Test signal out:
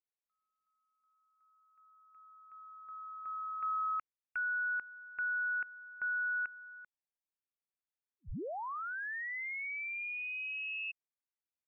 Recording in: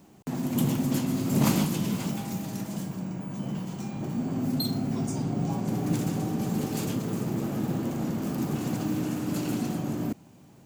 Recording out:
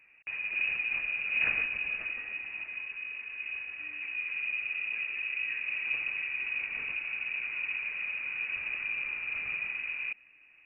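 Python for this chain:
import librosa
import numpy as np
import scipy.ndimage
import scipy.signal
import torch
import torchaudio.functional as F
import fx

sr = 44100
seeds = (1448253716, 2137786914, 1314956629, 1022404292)

y = fx.freq_invert(x, sr, carrier_hz=2700)
y = F.gain(torch.from_numpy(y), -6.0).numpy()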